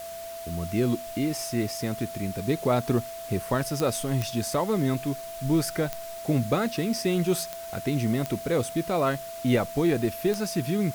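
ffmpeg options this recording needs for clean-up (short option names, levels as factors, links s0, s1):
-af "adeclick=t=4,bandreject=f=670:w=30,afwtdn=0.0056"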